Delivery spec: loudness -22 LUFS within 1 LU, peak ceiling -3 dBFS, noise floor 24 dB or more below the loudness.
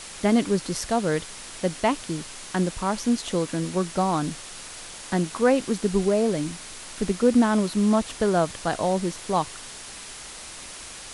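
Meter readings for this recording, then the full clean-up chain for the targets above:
noise floor -40 dBFS; noise floor target -49 dBFS; loudness -24.5 LUFS; peak level -8.0 dBFS; loudness target -22.0 LUFS
-> noise print and reduce 9 dB; trim +2.5 dB

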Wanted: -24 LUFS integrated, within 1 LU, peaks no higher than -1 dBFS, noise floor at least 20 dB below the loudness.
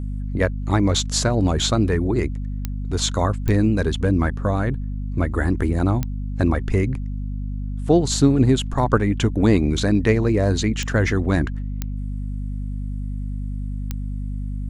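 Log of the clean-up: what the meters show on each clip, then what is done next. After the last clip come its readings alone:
clicks found 6; hum 50 Hz; highest harmonic 250 Hz; hum level -24 dBFS; loudness -22.0 LUFS; peak level -3.5 dBFS; loudness target -24.0 LUFS
-> de-click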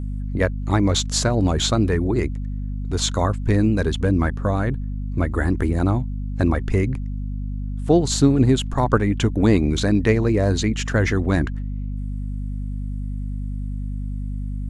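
clicks found 0; hum 50 Hz; highest harmonic 250 Hz; hum level -24 dBFS
-> de-hum 50 Hz, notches 5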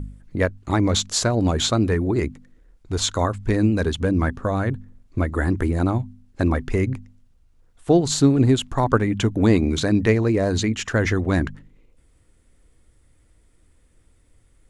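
hum not found; loudness -21.5 LUFS; peak level -4.5 dBFS; loudness target -24.0 LUFS
-> trim -2.5 dB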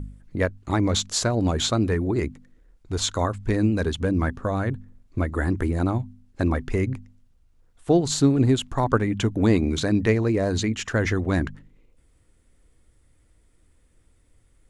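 loudness -24.0 LUFS; peak level -7.0 dBFS; noise floor -61 dBFS

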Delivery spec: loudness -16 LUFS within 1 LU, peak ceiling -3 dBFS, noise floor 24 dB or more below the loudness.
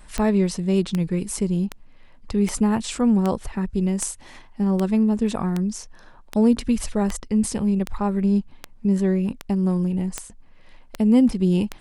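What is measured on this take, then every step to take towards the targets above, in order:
clicks found 16; loudness -22.5 LUFS; peak level -8.0 dBFS; loudness target -16.0 LUFS
-> de-click; trim +6.5 dB; peak limiter -3 dBFS

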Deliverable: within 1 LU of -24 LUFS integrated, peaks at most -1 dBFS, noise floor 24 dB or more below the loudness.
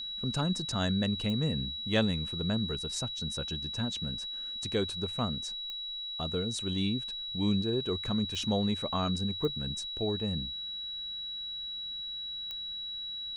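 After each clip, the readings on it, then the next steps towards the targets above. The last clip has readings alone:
clicks found 5; steady tone 3.9 kHz; tone level -36 dBFS; loudness -32.5 LUFS; peak level -14.5 dBFS; loudness target -24.0 LUFS
-> de-click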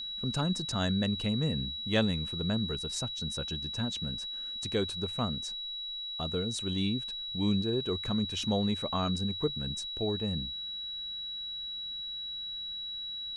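clicks found 0; steady tone 3.9 kHz; tone level -36 dBFS
-> band-stop 3.9 kHz, Q 30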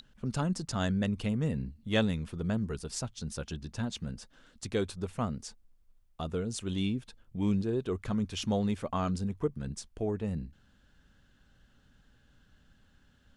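steady tone not found; loudness -33.5 LUFS; peak level -15.5 dBFS; loudness target -24.0 LUFS
-> trim +9.5 dB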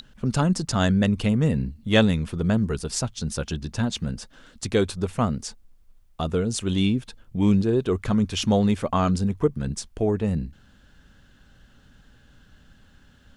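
loudness -24.0 LUFS; peak level -6.0 dBFS; noise floor -56 dBFS

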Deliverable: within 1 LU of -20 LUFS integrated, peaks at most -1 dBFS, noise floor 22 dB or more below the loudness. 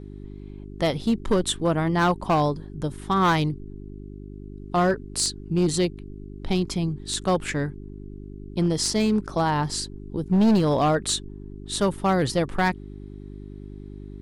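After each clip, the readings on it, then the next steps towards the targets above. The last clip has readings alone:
clipped samples 1.6%; clipping level -15.0 dBFS; hum 50 Hz; highest harmonic 400 Hz; hum level -37 dBFS; loudness -24.0 LUFS; peak level -15.0 dBFS; loudness target -20.0 LUFS
-> clip repair -15 dBFS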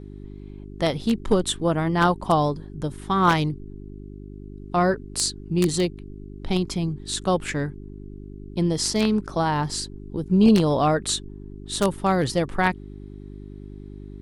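clipped samples 0.0%; hum 50 Hz; highest harmonic 400 Hz; hum level -37 dBFS
-> de-hum 50 Hz, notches 8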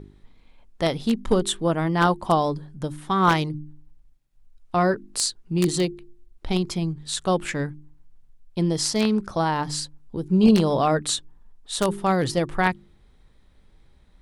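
hum not found; loudness -23.5 LUFS; peak level -5.5 dBFS; loudness target -20.0 LUFS
-> trim +3.5 dB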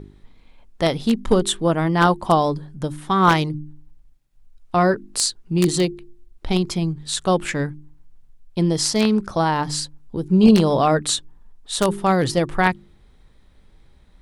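loudness -20.0 LUFS; peak level -2.0 dBFS; noise floor -53 dBFS

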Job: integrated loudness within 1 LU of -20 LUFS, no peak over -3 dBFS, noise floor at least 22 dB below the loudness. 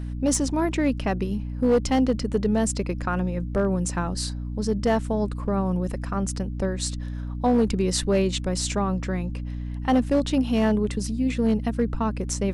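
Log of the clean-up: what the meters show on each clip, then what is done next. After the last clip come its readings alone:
clipped samples 0.7%; clipping level -14.0 dBFS; hum 60 Hz; highest harmonic 300 Hz; hum level -28 dBFS; loudness -25.0 LUFS; peak level -14.0 dBFS; loudness target -20.0 LUFS
-> clip repair -14 dBFS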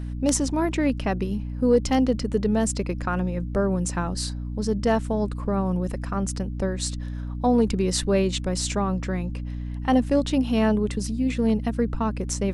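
clipped samples 0.0%; hum 60 Hz; highest harmonic 300 Hz; hum level -28 dBFS
-> de-hum 60 Hz, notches 5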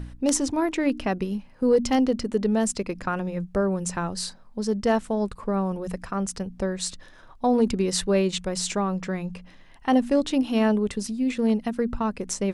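hum not found; loudness -25.5 LUFS; peak level -5.5 dBFS; loudness target -20.0 LUFS
-> trim +5.5 dB; peak limiter -3 dBFS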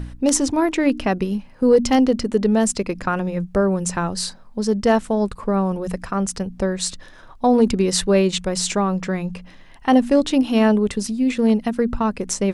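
loudness -20.0 LUFS; peak level -3.0 dBFS; noise floor -43 dBFS

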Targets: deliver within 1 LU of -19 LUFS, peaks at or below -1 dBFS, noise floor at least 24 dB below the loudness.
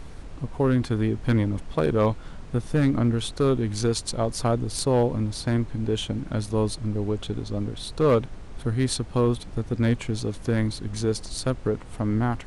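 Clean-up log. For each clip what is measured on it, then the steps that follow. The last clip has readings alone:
clipped samples 0.4%; clipping level -13.5 dBFS; noise floor -40 dBFS; noise floor target -50 dBFS; loudness -25.5 LUFS; peak level -13.5 dBFS; loudness target -19.0 LUFS
-> clip repair -13.5 dBFS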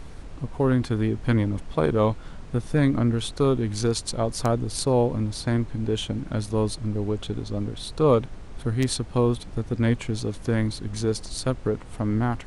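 clipped samples 0.0%; noise floor -40 dBFS; noise floor target -50 dBFS
-> noise print and reduce 10 dB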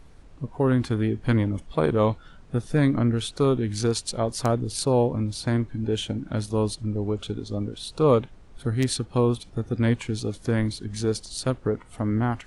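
noise floor -49 dBFS; noise floor target -50 dBFS
-> noise print and reduce 6 dB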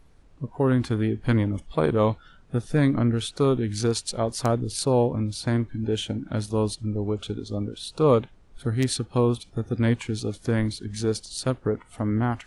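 noise floor -54 dBFS; loudness -25.5 LUFS; peak level -6.5 dBFS; loudness target -19.0 LUFS
-> trim +6.5 dB; peak limiter -1 dBFS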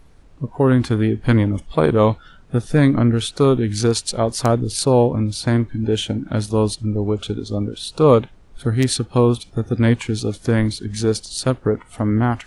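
loudness -19.0 LUFS; peak level -1.0 dBFS; noise floor -47 dBFS

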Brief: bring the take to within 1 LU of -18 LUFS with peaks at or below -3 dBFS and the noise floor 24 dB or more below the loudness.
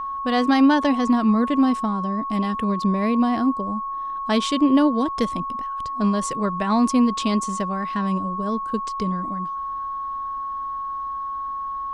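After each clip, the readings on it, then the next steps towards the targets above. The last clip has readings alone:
steady tone 1.1 kHz; tone level -26 dBFS; loudness -22.5 LUFS; peak level -7.0 dBFS; loudness target -18.0 LUFS
-> band-stop 1.1 kHz, Q 30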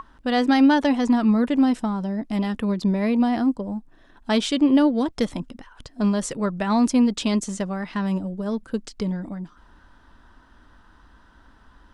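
steady tone not found; loudness -22.0 LUFS; peak level -7.5 dBFS; loudness target -18.0 LUFS
-> trim +4 dB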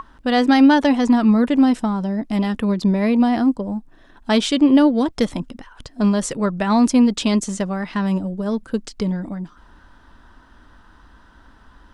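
loudness -18.0 LUFS; peak level -3.5 dBFS; noise floor -50 dBFS

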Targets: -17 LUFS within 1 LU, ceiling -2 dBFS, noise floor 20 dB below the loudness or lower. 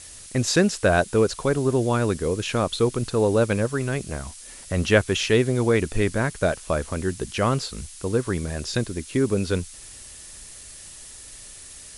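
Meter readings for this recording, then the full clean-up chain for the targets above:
noise floor -43 dBFS; noise floor target -44 dBFS; loudness -23.5 LUFS; peak level -5.0 dBFS; loudness target -17.0 LUFS
-> noise reduction 6 dB, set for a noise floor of -43 dBFS; trim +6.5 dB; peak limiter -2 dBFS

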